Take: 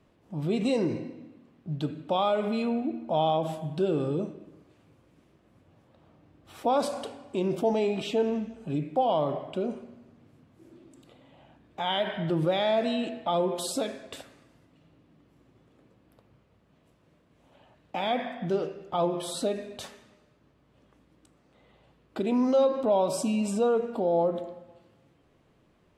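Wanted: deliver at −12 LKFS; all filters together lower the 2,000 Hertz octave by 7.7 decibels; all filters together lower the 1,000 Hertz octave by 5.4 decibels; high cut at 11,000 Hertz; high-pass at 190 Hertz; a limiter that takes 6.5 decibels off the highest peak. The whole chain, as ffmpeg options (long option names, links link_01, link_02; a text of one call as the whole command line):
ffmpeg -i in.wav -af "highpass=190,lowpass=11000,equalizer=frequency=1000:width_type=o:gain=-6.5,equalizer=frequency=2000:width_type=o:gain=-8.5,volume=21.5dB,alimiter=limit=-2dB:level=0:latency=1" out.wav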